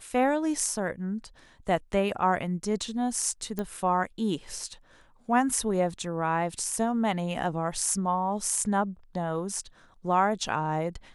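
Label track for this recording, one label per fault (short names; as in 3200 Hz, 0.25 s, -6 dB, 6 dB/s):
3.590000	3.590000	pop -18 dBFS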